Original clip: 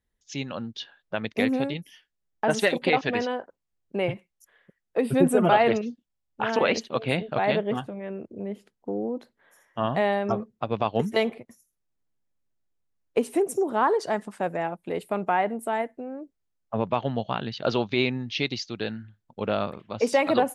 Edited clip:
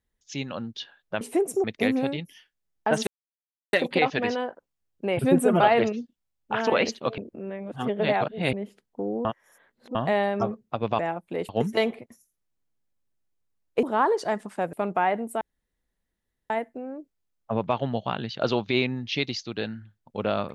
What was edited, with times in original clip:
0:02.64: splice in silence 0.66 s
0:04.10–0:05.08: remove
0:07.07–0:08.42: reverse
0:09.14–0:09.84: reverse
0:13.22–0:13.65: move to 0:01.21
0:14.55–0:15.05: move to 0:10.88
0:15.73: splice in room tone 1.09 s

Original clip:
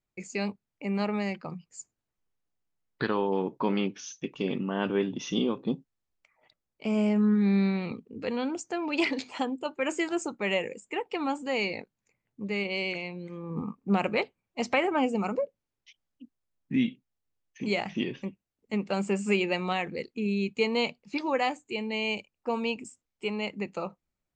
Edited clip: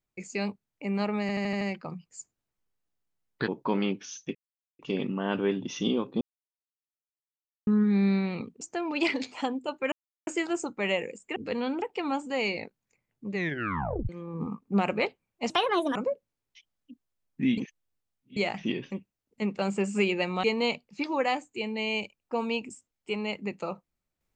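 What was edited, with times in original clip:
0:01.21: stutter 0.08 s, 6 plays
0:03.08–0:03.43: remove
0:04.30: splice in silence 0.44 s
0:05.72–0:07.18: silence
0:08.12–0:08.58: move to 0:10.98
0:09.89: splice in silence 0.35 s
0:12.49: tape stop 0.76 s
0:14.66–0:15.27: play speed 134%
0:16.89–0:17.68: reverse
0:19.75–0:20.58: remove

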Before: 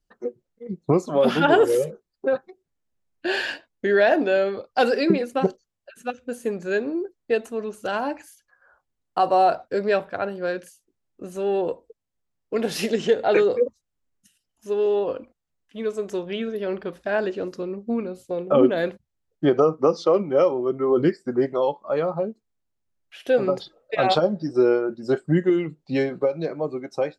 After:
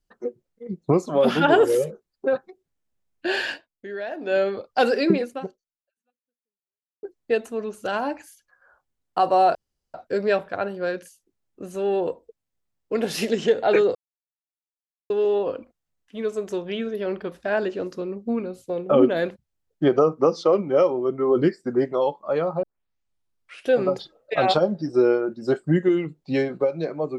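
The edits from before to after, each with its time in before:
0:03.52–0:04.37: duck −14 dB, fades 0.16 s
0:05.23–0:07.03: fade out exponential
0:09.55: splice in room tone 0.39 s
0:13.56–0:14.71: silence
0:22.24: tape start 1.06 s

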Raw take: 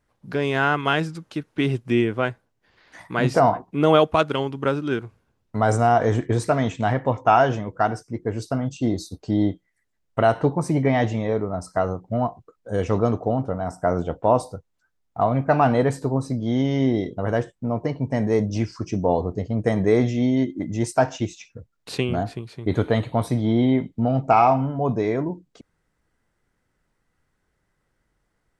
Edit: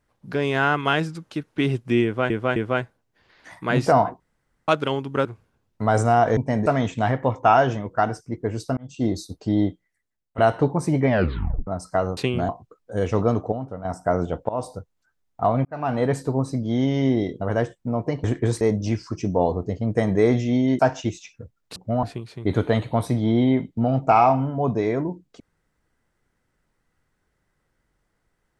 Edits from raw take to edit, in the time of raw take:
0:02.04–0:02.30: repeat, 3 plays
0:03.68–0:04.16: fill with room tone
0:04.73–0:04.99: remove
0:06.11–0:06.48: swap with 0:18.01–0:18.30
0:08.59–0:08.88: fade in
0:09.48–0:10.20: fade out, to −17 dB
0:10.90: tape stop 0.59 s
0:11.99–0:12.26: swap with 0:21.92–0:22.24
0:13.29–0:13.62: clip gain −7.5 dB
0:14.26–0:14.51: fade in, from −21 dB
0:15.42–0:15.93: fade in
0:20.48–0:20.95: remove

